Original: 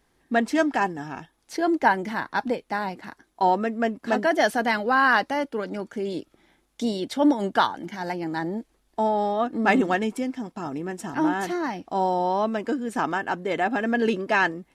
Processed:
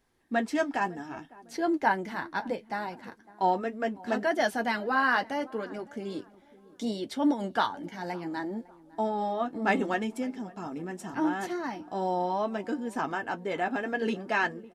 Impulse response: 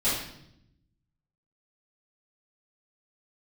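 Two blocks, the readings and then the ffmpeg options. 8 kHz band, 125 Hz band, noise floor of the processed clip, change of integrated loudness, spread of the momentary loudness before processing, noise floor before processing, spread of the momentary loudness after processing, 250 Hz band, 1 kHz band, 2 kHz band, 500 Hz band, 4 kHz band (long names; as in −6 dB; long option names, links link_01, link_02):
−6.0 dB, −6.0 dB, −56 dBFS, −6.0 dB, 11 LU, −68 dBFS, 11 LU, −6.0 dB, −6.0 dB, −5.5 dB, −6.0 dB, −6.0 dB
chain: -filter_complex "[0:a]asplit=2[link_01][link_02];[link_02]adelay=555,lowpass=frequency=1100:poles=1,volume=-20dB,asplit=2[link_03][link_04];[link_04]adelay=555,lowpass=frequency=1100:poles=1,volume=0.44,asplit=2[link_05][link_06];[link_06]adelay=555,lowpass=frequency=1100:poles=1,volume=0.44[link_07];[link_01][link_03][link_05][link_07]amix=inputs=4:normalize=0,flanger=delay=7.6:depth=4.2:regen=-42:speed=0.69:shape=triangular,volume=-2dB"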